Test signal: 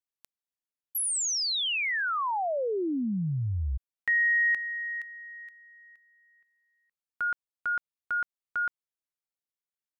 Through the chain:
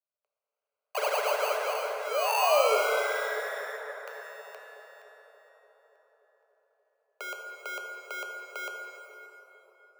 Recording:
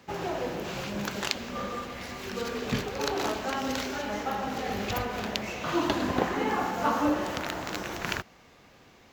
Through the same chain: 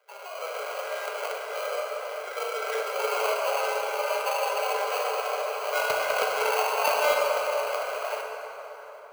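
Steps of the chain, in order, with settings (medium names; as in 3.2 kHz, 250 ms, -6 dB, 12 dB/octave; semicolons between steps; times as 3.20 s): peaking EQ 1.9 kHz -13 dB 1.4 oct; Chebyshev shaper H 4 -20 dB, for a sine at -9 dBFS; dynamic bell 830 Hz, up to +6 dB, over -46 dBFS, Q 1.2; in parallel at -1 dB: compression 5:1, threshold -44 dBFS; on the sum: sample-rate reducer 1.8 kHz, jitter 0%; rippled Chebyshev high-pass 420 Hz, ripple 9 dB; hard clipper -23 dBFS; level rider gain up to 12.5 dB; on a send: filtered feedback delay 290 ms, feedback 75%, low-pass 2.3 kHz, level -17.5 dB; on the sum: plate-style reverb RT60 4.1 s, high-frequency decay 0.55×, pre-delay 0 ms, DRR 0.5 dB; trim -6.5 dB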